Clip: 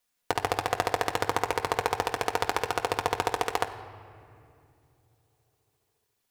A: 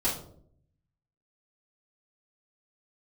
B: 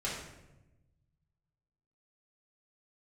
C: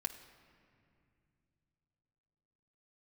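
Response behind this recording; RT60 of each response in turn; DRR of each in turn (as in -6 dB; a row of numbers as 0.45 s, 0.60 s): C; 0.60 s, 1.0 s, 2.4 s; -7.5 dB, -7.5 dB, 4.0 dB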